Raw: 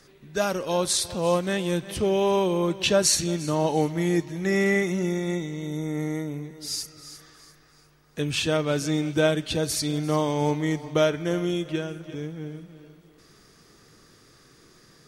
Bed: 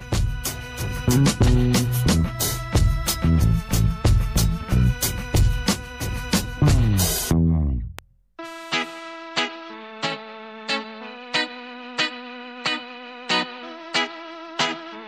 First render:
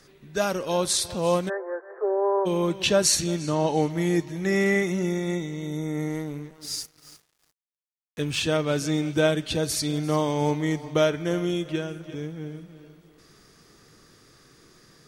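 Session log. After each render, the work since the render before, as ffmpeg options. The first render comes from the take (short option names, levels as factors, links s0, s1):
-filter_complex "[0:a]asplit=3[s0][s1][s2];[s0]afade=t=out:st=1.48:d=0.02[s3];[s1]asuperpass=centerf=820:order=20:qfactor=0.59,afade=t=in:st=1.48:d=0.02,afade=t=out:st=2.45:d=0.02[s4];[s2]afade=t=in:st=2.45:d=0.02[s5];[s3][s4][s5]amix=inputs=3:normalize=0,asettb=1/sr,asplit=3[s6][s7][s8];[s6]atrim=end=3.394[s9];[s7]atrim=start=3.39:end=3.9,asetpts=PTS-STARTPTS,afade=t=in:d=0.004:c=qsin,afade=t=out:st=0.506:d=0.004:c=qsin,lowpass=8200[s10];[s8]atrim=start=3.896[s11];[s9][s10]acrossfade=d=0.004:c1=hsin:c2=qsin[s12];[s12][s11]acrossfade=d=0.004:c1=qsin:c2=hsin,asettb=1/sr,asplit=3[s13][s14][s15];[s13]atrim=end=6.094[s16];[s14]atrim=start=6.09:end=8.41,asetpts=PTS-STARTPTS,afade=t=in:d=0.004:c=qsin,afade=t=out:st=2.316:d=0.004:c=qsin,aeval=exprs='sgn(val(0))*max(abs(val(0))-0.00501,0)':c=same[s17];[s15]atrim=start=8.406[s18];[s16][s17]acrossfade=d=0.004:c1=hsin:c2=qsin[s19];[s19][s18]acrossfade=d=0.004:c1=qsin:c2=hsin"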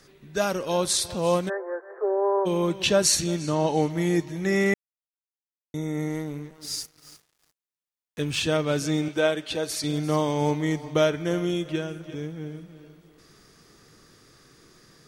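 -filter_complex "[0:a]asettb=1/sr,asplit=3[s0][s1][s2];[s0]atrim=end=9.084[s3];[s1]atrim=start=9.08:end=9.84,asetpts=PTS-STARTPTS,afade=t=in:d=0.004:c=qsin,afade=t=out:st=0.756:d=0.004:c=qsin,bass=f=250:g=-13,treble=f=4000:g=-4[s4];[s2]atrim=start=9.836[s5];[s3][s4]acrossfade=d=0.004:c1=hsin:c2=qsin[s6];[s6][s5]acrossfade=d=0.004:c1=qsin:c2=hsin,asplit=3[s7][s8][s9];[s7]atrim=end=4.74,asetpts=PTS-STARTPTS,afade=t=out:st=4.736:d=0.004:c=hsin[s10];[s8]atrim=start=4.74:end=5.74,asetpts=PTS-STARTPTS,volume=0[s11];[s9]atrim=start=5.74,asetpts=PTS-STARTPTS,afade=t=in:d=0.004:c=hsin[s12];[s10][s11][s12]concat=n=3:v=0:a=1"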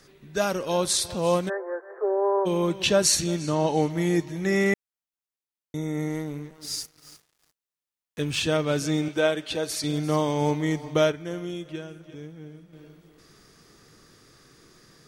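-filter_complex "[0:a]asplit=3[s0][s1][s2];[s0]atrim=end=11.122[s3];[s1]atrim=start=11.118:end=12.732,asetpts=PTS-STARTPTS,volume=0.447[s4];[s2]atrim=start=12.728[s5];[s3][s4]acrossfade=d=0.004:c1=hsin:c2=hsin[s6];[s6][s5]acrossfade=d=0.004:c1=hsin:c2=hsin"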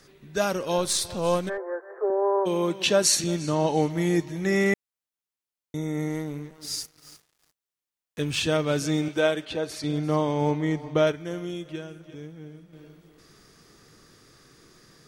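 -filter_complex "[0:a]asettb=1/sr,asplit=3[s0][s1][s2];[s0]atrim=end=0.784[s3];[s1]atrim=start=0.78:end=1.58,asetpts=PTS-STARTPTS,afade=t=in:d=0.004:c=qsin,afade=t=out:st=0.796:d=0.004:c=qsin,aeval=exprs='if(lt(val(0),0),0.708*val(0),val(0))':c=same[s4];[s2]atrim=start=1.576[s5];[s3][s4]acrossfade=d=0.004:c1=hsin:c2=qsin[s6];[s6][s5]acrossfade=d=0.004:c1=qsin:c2=hsin,asettb=1/sr,asplit=3[s7][s8][s9];[s7]atrim=end=2.104[s10];[s8]atrim=start=2.1:end=3.24,asetpts=PTS-STARTPTS,afade=t=in:d=0.004:c=qsin,afade=t=out:st=1.136:d=0.004:c=qsin,highpass=190[s11];[s9]atrim=start=3.236[s12];[s10][s11]acrossfade=d=0.004:c1=hsin:c2=qsin[s13];[s13][s12]acrossfade=d=0.004:c1=qsin:c2=hsin,asettb=1/sr,asplit=3[s14][s15][s16];[s14]atrim=end=9.454[s17];[s15]atrim=start=9.45:end=11.07,asetpts=PTS-STARTPTS,afade=t=in:d=0.004:c=qsin,afade=t=out:st=1.616:d=0.004:c=qsin,highshelf=f=4300:g=-11.5[s18];[s16]atrim=start=11.066[s19];[s17][s18]acrossfade=d=0.004:c1=hsin:c2=qsin[s20];[s20][s19]acrossfade=d=0.004:c1=qsin:c2=hsin"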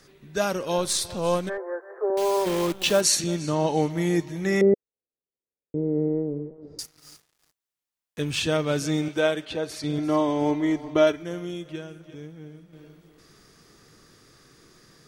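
-filter_complex "[0:a]asettb=1/sr,asplit=3[s0][s1][s2];[s0]atrim=end=2.174[s3];[s1]atrim=start=2.17:end=3.01,asetpts=PTS-STARTPTS,afade=t=in:d=0.004:c=qsin,afade=t=out:st=0.836:d=0.004:c=qsin,acrusher=bits=6:dc=4:mix=0:aa=0.000001[s4];[s2]atrim=start=3.006[s5];[s3][s4]acrossfade=d=0.004:c1=hsin:c2=qsin[s6];[s6][s5]acrossfade=d=0.004:c1=qsin:c2=hsin,asettb=1/sr,asplit=3[s7][s8][s9];[s7]atrim=end=4.614[s10];[s8]atrim=start=4.61:end=6.79,asetpts=PTS-STARTPTS,afade=t=in:d=0.004:c=qsin,afade=t=out:st=2.176:d=0.004:c=qsin,lowpass=f=470:t=q:w=2.8[s11];[s9]atrim=start=6.786[s12];[s10][s11]acrossfade=d=0.004:c1=hsin:c2=qsin[s13];[s13][s12]acrossfade=d=0.004:c1=qsin:c2=hsin,asettb=1/sr,asplit=3[s14][s15][s16];[s14]atrim=end=9.984[s17];[s15]atrim=start=9.98:end=11.23,asetpts=PTS-STARTPTS,afade=t=in:d=0.004:c=qsin,afade=t=out:st=1.246:d=0.004:c=qsin,aecho=1:1:3:0.65,atrim=end_sample=55125[s18];[s16]atrim=start=11.226[s19];[s17][s18]acrossfade=d=0.004:c1=hsin:c2=qsin[s20];[s20][s19]acrossfade=d=0.004:c1=qsin:c2=hsin"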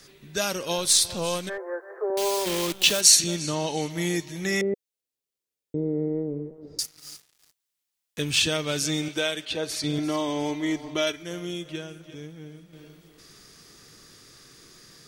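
-filter_complex "[0:a]acrossover=split=2300[s0][s1];[s0]alimiter=limit=0.106:level=0:latency=1:release=467[s2];[s1]acontrast=84[s3];[s2][s3]amix=inputs=2:normalize=0"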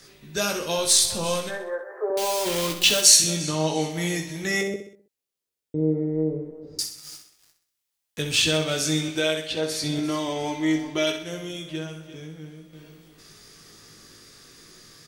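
-filter_complex "[0:a]asplit=2[s0][s1];[s1]adelay=19,volume=0.531[s2];[s0][s2]amix=inputs=2:normalize=0,aecho=1:1:64|128|192|256|320:0.355|0.167|0.0784|0.0368|0.0173"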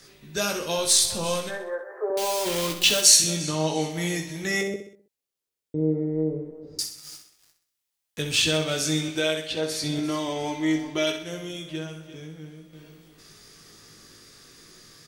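-af "volume=0.891"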